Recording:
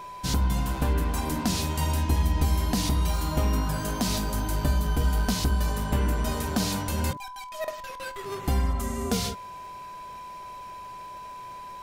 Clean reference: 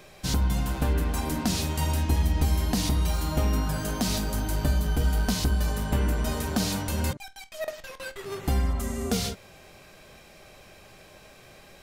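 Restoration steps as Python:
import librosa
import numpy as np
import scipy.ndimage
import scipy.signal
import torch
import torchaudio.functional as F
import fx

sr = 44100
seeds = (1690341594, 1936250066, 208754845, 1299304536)

y = fx.fix_declick_ar(x, sr, threshold=6.5)
y = fx.notch(y, sr, hz=1000.0, q=30.0)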